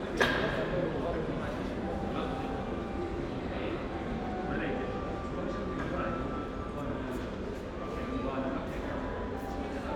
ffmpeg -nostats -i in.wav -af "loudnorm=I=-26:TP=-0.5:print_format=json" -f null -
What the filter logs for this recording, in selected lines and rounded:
"input_i" : "-35.1",
"input_tp" : "-10.5",
"input_lra" : "3.4",
"input_thresh" : "-45.1",